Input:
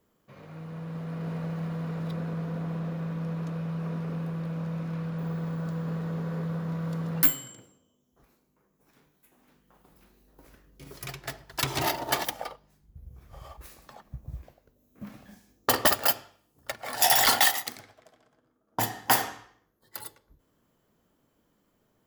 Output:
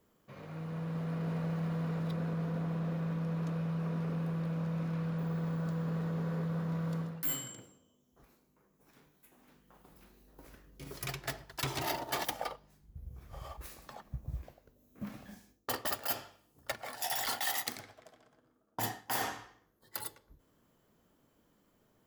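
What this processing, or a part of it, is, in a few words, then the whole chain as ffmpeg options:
compression on the reversed sound: -af "areverse,acompressor=threshold=-31dB:ratio=16,areverse"

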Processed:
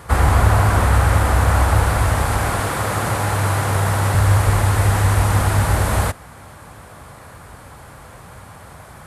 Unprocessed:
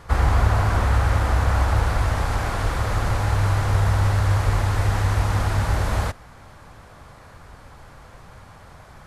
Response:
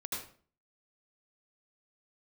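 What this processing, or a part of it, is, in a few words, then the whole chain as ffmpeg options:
budget condenser microphone: -filter_complex "[0:a]highpass=61,highshelf=f=7.3k:t=q:w=1.5:g=6.5,asettb=1/sr,asplit=3[a][b][c];[a]atrim=end=2.604[d];[b]atrim=start=2.6:end=4.15,asetpts=PTS-STARTPTS,afade=t=in:d=0.004:c=qsin,afade=t=out:st=1.546:d=0.004:c=qsin,highpass=120[e];[c]atrim=start=4.146[f];[d][e]acrossfade=d=0.004:c1=hsin:c2=qsin[g];[g][f]acrossfade=d=0.004:c1=qsin:c2=hsin,volume=6dB"

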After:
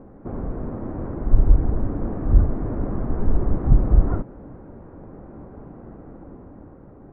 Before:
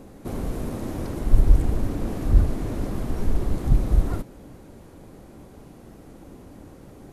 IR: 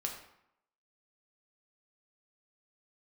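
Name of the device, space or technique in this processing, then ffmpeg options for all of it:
action camera in a waterproof case: -af "lowpass=f=1.5k:w=0.5412,lowpass=f=1.5k:w=1.3066,dynaudnorm=f=220:g=11:m=6dB" -ar 32000 -c:a aac -b:a 96k

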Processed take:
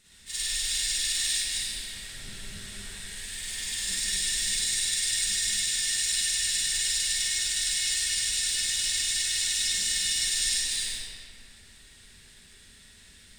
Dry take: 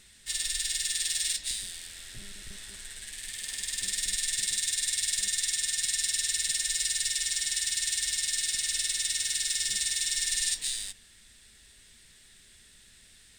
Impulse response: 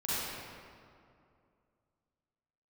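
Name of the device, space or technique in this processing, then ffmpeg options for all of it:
stairwell: -filter_complex "[1:a]atrim=start_sample=2205[a];[0:a][a]afir=irnorm=-1:irlink=0,volume=-2.5dB"

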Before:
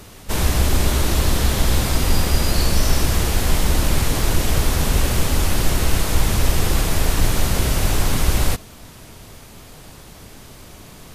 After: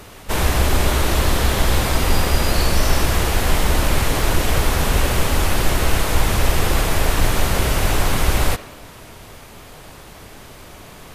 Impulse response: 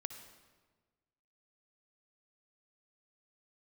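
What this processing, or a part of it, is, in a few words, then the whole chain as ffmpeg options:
filtered reverb send: -filter_complex "[0:a]asplit=2[a][b];[b]highpass=330,lowpass=3.6k[c];[1:a]atrim=start_sample=2205[d];[c][d]afir=irnorm=-1:irlink=0,volume=-0.5dB[e];[a][e]amix=inputs=2:normalize=0"

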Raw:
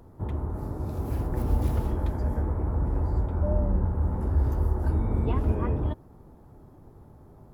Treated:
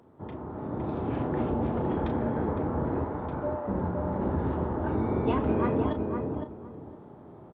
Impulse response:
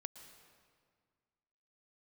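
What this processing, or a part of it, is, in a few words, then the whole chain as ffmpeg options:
Bluetooth headset: -filter_complex "[0:a]asplit=3[a][b][c];[a]afade=t=out:st=1.49:d=0.02[d];[b]lowpass=f=1.1k:p=1,afade=t=in:st=1.49:d=0.02,afade=t=out:st=1.89:d=0.02[e];[c]afade=t=in:st=1.89:d=0.02[f];[d][e][f]amix=inputs=3:normalize=0,asettb=1/sr,asplit=3[g][h][i];[g]atrim=end=3.044[j];[h]atrim=start=3.04:end=3.68,asetpts=PTS-STARTPTS,afade=t=in:d=0.004:c=qsin,afade=t=out:st=0.636:d=0.004:c=qsin,highpass=680[k];[i]atrim=start=3.676[l];[j][k]acrossfade=d=0.004:c1=hsin:c2=qsin[m];[m][l]acrossfade=d=0.004:c1=qsin:c2=hsin,highpass=180,asplit=2[n][o];[o]adelay=34,volume=-10dB[p];[n][p]amix=inputs=2:normalize=0,asplit=2[q][r];[r]adelay=510,lowpass=f=1.1k:p=1,volume=-3.5dB,asplit=2[s][t];[t]adelay=510,lowpass=f=1.1k:p=1,volume=0.23,asplit=2[u][v];[v]adelay=510,lowpass=f=1.1k:p=1,volume=0.23[w];[q][s][u][w]amix=inputs=4:normalize=0,dynaudnorm=f=110:g=11:m=6.5dB,aresample=8000,aresample=44100,volume=-2dB" -ar 32000 -c:a sbc -b:a 64k

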